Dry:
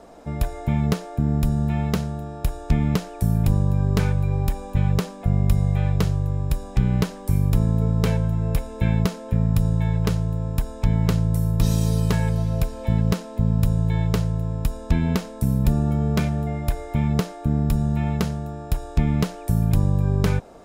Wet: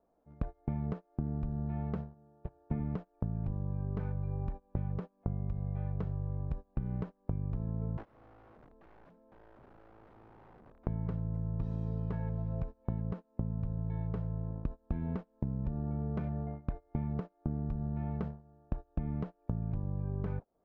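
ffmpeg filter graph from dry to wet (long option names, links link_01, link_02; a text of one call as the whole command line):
ffmpeg -i in.wav -filter_complex "[0:a]asettb=1/sr,asplit=3[link_01][link_02][link_03];[link_01]atrim=end=2.144[link_04];[link_02]atrim=start=2.14:end=2.8,asetpts=PTS-STARTPTS,afade=type=in:duration=0.004:curve=qsin,afade=type=out:start_time=0.656:duration=0.004:curve=qsin,highpass=100,lowpass=3300,asplit=2[link_05][link_06];[link_06]adelay=32,volume=-12.5dB[link_07];[link_05][link_07]amix=inputs=2:normalize=0,atrim=end_sample=29106[link_08];[link_03]atrim=start=2.796[link_09];[link_04][link_08]acrossfade=duration=0.004:curve1=hsin:curve2=qsin[link_10];[link_10][link_09]acrossfade=duration=0.004:curve1=qsin:curve2=hsin,asettb=1/sr,asplit=3[link_11][link_12][link_13];[link_11]atrim=end=7.974[link_14];[link_12]atrim=start=7.97:end=10.87,asetpts=PTS-STARTPTS,afade=type=in:duration=0.004:curve=qsin,afade=type=out:start_time=2.896:duration=0.004:curve=qsin,lowshelf=frequency=160:gain=8,acompressor=threshold=-14dB:ratio=12:attack=3.2:release=140:knee=1:detection=peak,aeval=exprs='(mod(15*val(0)+1,2)-1)/15':channel_layout=same[link_15];[link_13]atrim=start=10.866[link_16];[link_14][link_15]acrossfade=duration=0.004:curve1=hsin:curve2=qsin[link_17];[link_17][link_16]acrossfade=duration=0.004:curve1=qsin:curve2=hsin,lowpass=1200,agate=range=-28dB:threshold=-23dB:ratio=16:detection=peak,acompressor=threshold=-31dB:ratio=12" out.wav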